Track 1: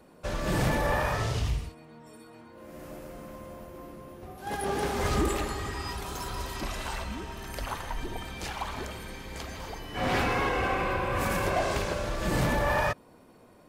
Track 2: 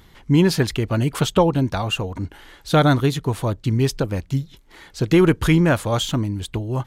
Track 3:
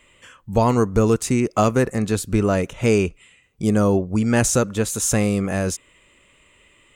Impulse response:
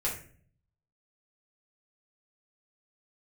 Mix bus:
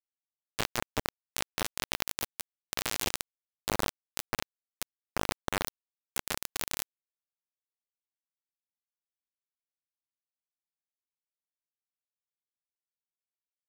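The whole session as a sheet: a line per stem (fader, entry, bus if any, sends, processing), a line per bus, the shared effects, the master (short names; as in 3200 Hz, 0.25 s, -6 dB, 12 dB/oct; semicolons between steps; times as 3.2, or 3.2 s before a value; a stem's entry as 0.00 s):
+2.5 dB, 1.65 s, bus A, no send, dry
-16.5 dB, 0.00 s, no bus, no send, sine-wave speech; compressor 4:1, threshold -23 dBFS, peak gain reduction 14 dB; envelope flanger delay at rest 2.2 ms, full sweep at -22.5 dBFS
-8.0 dB, 0.00 s, bus A, no send, resonant high shelf 6900 Hz -12.5 dB, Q 1.5
bus A: 0.0 dB, bell 1300 Hz -10.5 dB 0.33 oct; limiter -23 dBFS, peak gain reduction 11.5 dB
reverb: off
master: bit-crush 4-bit; fast leveller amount 50%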